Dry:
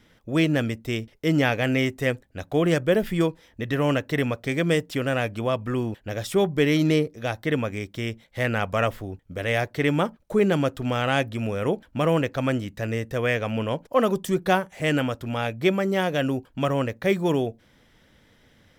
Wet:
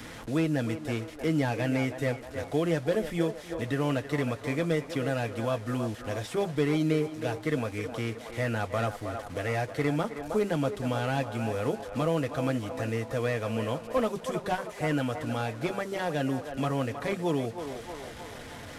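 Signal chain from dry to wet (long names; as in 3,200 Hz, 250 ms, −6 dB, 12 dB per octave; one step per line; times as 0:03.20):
linear delta modulator 64 kbit/s, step −38 dBFS
notch comb filter 190 Hz
feedback echo with a band-pass in the loop 316 ms, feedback 60%, band-pass 830 Hz, level −8 dB
multiband upward and downward compressor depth 40%
level −4.5 dB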